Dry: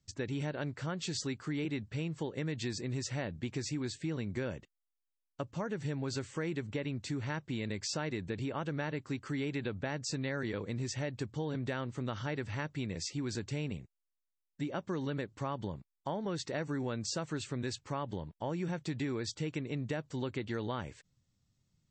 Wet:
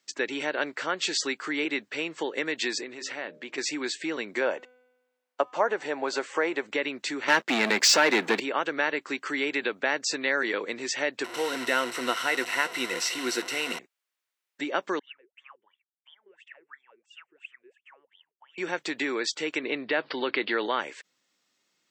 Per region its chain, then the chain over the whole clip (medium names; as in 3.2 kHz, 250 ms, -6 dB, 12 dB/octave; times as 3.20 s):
2.83–3.58 s: low-pass 4 kHz 6 dB/octave + compression 5:1, threshold -39 dBFS + de-hum 67.02 Hz, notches 9
4.41–6.66 s: peaking EQ 740 Hz +12 dB 1.6 oct + feedback comb 250 Hz, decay 1.2 s, mix 40%
7.28–8.40 s: high-pass 150 Hz 24 dB/octave + peaking EQ 220 Hz +6.5 dB 0.22 oct + waveshaping leveller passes 3
11.24–13.79 s: one-bit delta coder 64 kbps, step -39.5 dBFS + rippled EQ curve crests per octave 2, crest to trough 10 dB
14.99–18.58 s: wah-wah 2.9 Hz 360–3500 Hz, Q 16 + FFT filter 140 Hz 0 dB, 220 Hz -13 dB, 620 Hz -21 dB, 1 kHz -12 dB, 2.8 kHz +4 dB, 4.2 kHz -23 dB, 9.3 kHz +7 dB
19.63–20.66 s: steep low-pass 5 kHz 96 dB/octave + level flattener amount 50%
whole clip: high-pass 310 Hz 24 dB/octave; peaking EQ 2 kHz +8 dB 2.1 oct; trim +7.5 dB